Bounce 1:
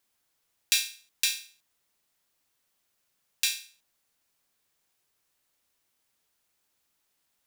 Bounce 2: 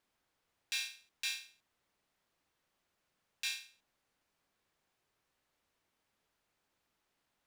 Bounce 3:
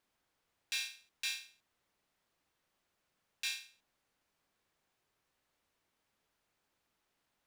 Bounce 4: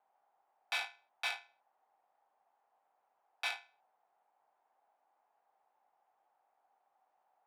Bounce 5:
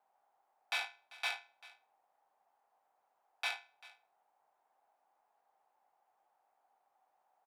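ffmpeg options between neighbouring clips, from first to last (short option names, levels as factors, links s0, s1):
-af "lowpass=f=1900:p=1,alimiter=level_in=1.33:limit=0.0631:level=0:latency=1:release=65,volume=0.75,volume=1.26"
-af "asoftclip=type=hard:threshold=0.0422"
-af "adynamicsmooth=sensitivity=5:basefreq=1300,highpass=f=880:t=q:w=7.4,afreqshift=-97,volume=1.68"
-af "aecho=1:1:392:0.1"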